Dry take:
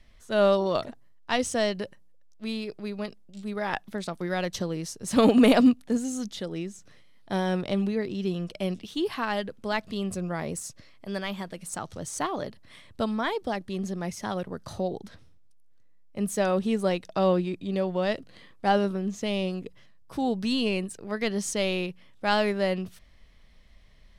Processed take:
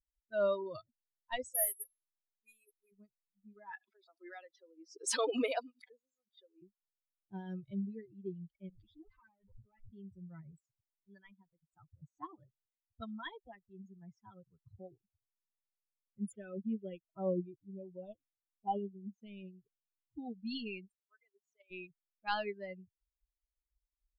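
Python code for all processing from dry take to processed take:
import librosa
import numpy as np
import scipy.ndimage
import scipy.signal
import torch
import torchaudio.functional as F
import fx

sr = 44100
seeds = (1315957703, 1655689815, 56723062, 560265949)

y = fx.chain(x, sr, fx.lowpass(hz=3000.0, slope=12),
    fx.peak_eq(hz=190.0, db=-14.5, octaves=0.93),
    fx.resample_bad(factor=4, down='none', up='zero_stuff'), at=(1.54, 2.92))
y = fx.chain(y, sr, fx.highpass(hz=390.0, slope=24),
    fx.pre_swell(db_per_s=40.0), at=(3.71, 6.62))
y = fx.chain(y, sr, fx.lower_of_two(delay_ms=9.7),
    fx.tube_stage(drive_db=34.0, bias=0.65),
    fx.env_flatten(amount_pct=100), at=(8.69, 9.91))
y = fx.chain(y, sr, fx.high_shelf(hz=5300.0, db=9.5),
    fx.notch(hz=4600.0, q=5.8), at=(12.47, 14.76))
y = fx.chain(y, sr, fx.resample_bad(factor=6, down='none', up='filtered'),
    fx.filter_held_notch(hz=4.1, low_hz=980.0, high_hz=2500.0), at=(16.32, 19.13))
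y = fx.chain(y, sr, fx.highpass(hz=520.0, slope=12),
    fx.level_steps(step_db=9), at=(20.94, 21.71))
y = fx.bin_expand(y, sr, power=3.0)
y = fx.env_lowpass(y, sr, base_hz=840.0, full_db=-30.5)
y = F.gain(torch.from_numpy(y), -6.5).numpy()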